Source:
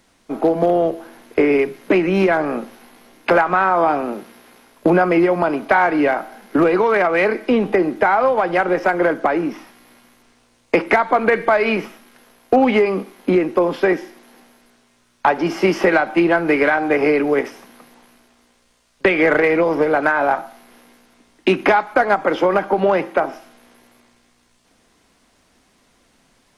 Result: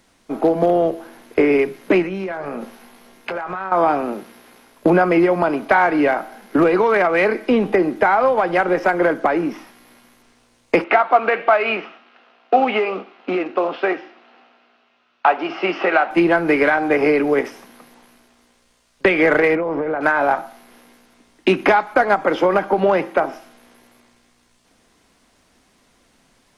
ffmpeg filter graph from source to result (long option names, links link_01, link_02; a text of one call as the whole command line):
ffmpeg -i in.wav -filter_complex "[0:a]asettb=1/sr,asplit=3[link_01][link_02][link_03];[link_01]atrim=end=2.024[link_04];[link_02]atrim=start=2.02:end=3.72,asetpts=PTS-STARTPTS,afade=type=in:duration=0.004:curve=qsin,afade=type=out:start_time=1.696:duration=0.004:curve=qsin,bandreject=frequency=300:width=7,acompressor=threshold=-23dB:ratio=8:attack=3.2:release=140:knee=1:detection=peak,asplit=2[link_05][link_06];[link_06]adelay=21,volume=-11dB[link_07];[link_05][link_07]amix=inputs=2:normalize=0,atrim=end_sample=74970[link_08];[link_03]atrim=start=3.716[link_09];[link_04][link_08]acrossfade=duration=0.004:curve1=hsin:curve2=qsin[link_10];[link_10][link_09]acrossfade=duration=0.004:curve1=qsin:curve2=hsin,asettb=1/sr,asplit=3[link_11][link_12][link_13];[link_11]atrim=end=10.844[link_14];[link_12]atrim=start=10.84:end=16.11,asetpts=PTS-STARTPTS,afade=type=in:duration=0.004:curve=qsin,afade=type=out:start_time=5.266:duration=0.004:curve=qsin,flanger=delay=2.8:depth=6.4:regen=-86:speed=1.3:shape=sinusoidal,acrusher=bits=6:mode=log:mix=0:aa=0.000001,highpass=280,equalizer=frequency=720:width_type=q:width=4:gain=8,equalizer=frequency=1300:width_type=q:width=4:gain=9,equalizer=frequency=2700:width_type=q:width=4:gain=9,lowpass=frequency=4300:width=0.5412,lowpass=frequency=4300:width=1.3066[link_15];[link_13]atrim=start=16.106[link_16];[link_14][link_15]acrossfade=duration=0.004:curve1=hsin:curve2=qsin[link_17];[link_17][link_16]acrossfade=duration=0.004:curve1=qsin:curve2=hsin,asettb=1/sr,asplit=3[link_18][link_19][link_20];[link_18]atrim=end=19.554[link_21];[link_19]atrim=start=19.55:end=20.01,asetpts=PTS-STARTPTS,afade=type=in:duration=0.004:curve=qsin,afade=type=out:start_time=0.456:duration=0.004:curve=qsin,lowpass=2100,acompressor=threshold=-18dB:ratio=6:attack=3.2:release=140:knee=1:detection=peak[link_22];[link_20]atrim=start=20.006[link_23];[link_21][link_22]acrossfade=duration=0.004:curve1=hsin:curve2=qsin[link_24];[link_24][link_23]acrossfade=duration=0.004:curve1=qsin:curve2=hsin" out.wav